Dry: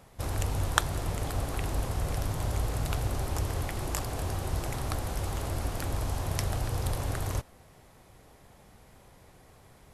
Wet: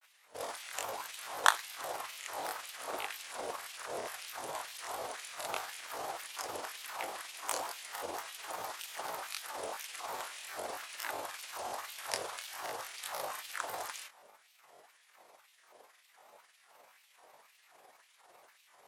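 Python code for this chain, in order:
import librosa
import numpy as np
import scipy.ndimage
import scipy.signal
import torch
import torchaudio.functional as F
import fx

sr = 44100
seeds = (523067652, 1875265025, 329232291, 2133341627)

y = fx.filter_lfo_highpass(x, sr, shape='sine', hz=3.7, low_hz=530.0, high_hz=2700.0, q=1.6)
y = fx.stretch_grains(y, sr, factor=1.9, grain_ms=88.0)
y = fx.granulator(y, sr, seeds[0], grain_ms=100.0, per_s=20.0, spray_ms=20.0, spread_st=3)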